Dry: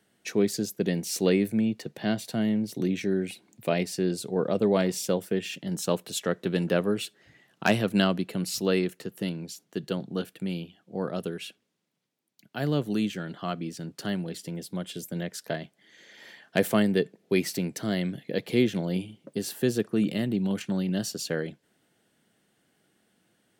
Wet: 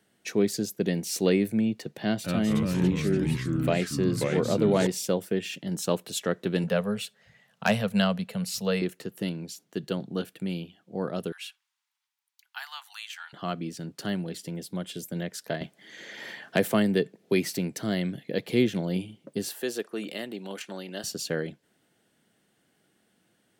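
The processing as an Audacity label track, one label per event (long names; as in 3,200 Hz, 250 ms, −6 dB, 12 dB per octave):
2.020000	4.870000	delay with pitch and tempo change per echo 222 ms, each echo −3 semitones, echoes 3
6.640000	8.820000	Chebyshev band-stop filter 220–470 Hz
11.320000	13.330000	Butterworth high-pass 830 Hz 72 dB per octave
15.610000	17.490000	multiband upward and downward compressor depth 40%
19.490000	21.040000	high-pass filter 460 Hz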